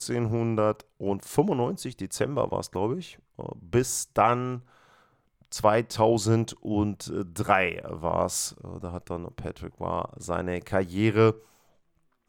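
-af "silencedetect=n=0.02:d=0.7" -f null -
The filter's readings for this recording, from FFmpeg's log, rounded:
silence_start: 4.58
silence_end: 5.52 | silence_duration: 0.94
silence_start: 11.32
silence_end: 12.29 | silence_duration: 0.97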